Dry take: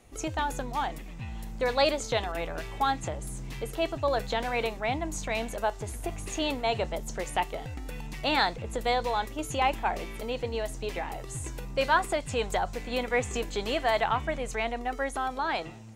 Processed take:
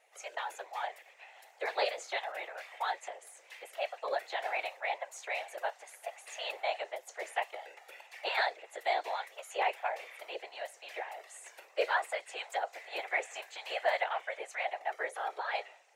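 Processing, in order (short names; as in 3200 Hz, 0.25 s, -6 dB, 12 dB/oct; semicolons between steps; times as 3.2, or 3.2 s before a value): rippled Chebyshev high-pass 510 Hz, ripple 9 dB; whisperiser; gain -1.5 dB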